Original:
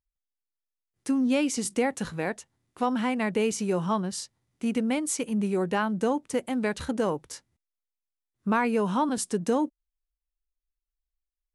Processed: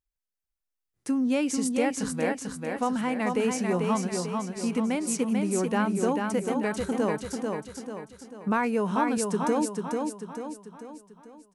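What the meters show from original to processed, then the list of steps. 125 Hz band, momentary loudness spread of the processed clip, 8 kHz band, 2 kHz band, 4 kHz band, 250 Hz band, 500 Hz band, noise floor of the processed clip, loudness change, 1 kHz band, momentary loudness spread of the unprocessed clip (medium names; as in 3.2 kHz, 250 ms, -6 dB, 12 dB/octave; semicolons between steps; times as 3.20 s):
+1.0 dB, 13 LU, +0.5 dB, 0.0 dB, -1.5 dB, +1.0 dB, +1.0 dB, -85 dBFS, 0.0 dB, +0.5 dB, 9 LU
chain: peaking EQ 3.5 kHz -3.5 dB 0.79 oct; on a send: feedback delay 442 ms, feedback 47%, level -4 dB; on the sum: trim -1 dB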